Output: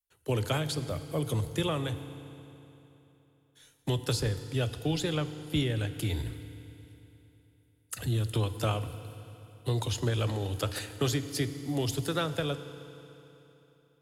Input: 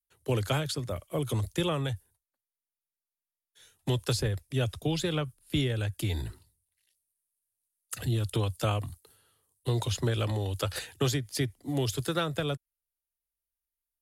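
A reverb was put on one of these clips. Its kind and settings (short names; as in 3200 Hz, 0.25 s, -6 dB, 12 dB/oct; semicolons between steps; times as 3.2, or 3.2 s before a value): FDN reverb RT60 3.3 s, high-frequency decay 0.9×, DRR 10.5 dB; gain -1 dB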